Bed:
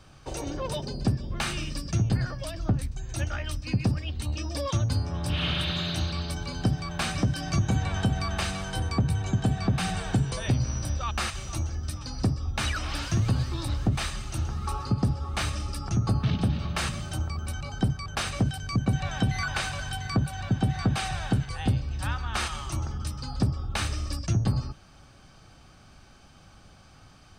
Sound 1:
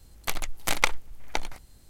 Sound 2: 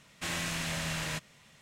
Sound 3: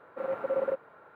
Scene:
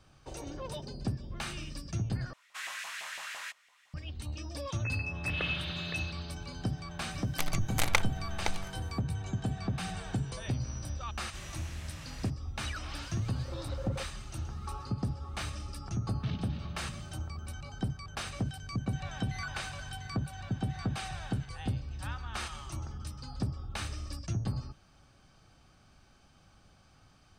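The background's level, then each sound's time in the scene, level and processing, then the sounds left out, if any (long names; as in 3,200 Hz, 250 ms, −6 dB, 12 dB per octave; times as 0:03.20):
bed −8.5 dB
0:02.33: overwrite with 2 −7.5 dB + auto-filter high-pass saw up 5.9 Hz 770–2,000 Hz
0:04.57: mix in 1 −15.5 dB + voice inversion scrambler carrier 2,600 Hz
0:07.11: mix in 1 −4 dB
0:11.11: mix in 2 −14.5 dB
0:13.28: mix in 3 −13.5 dB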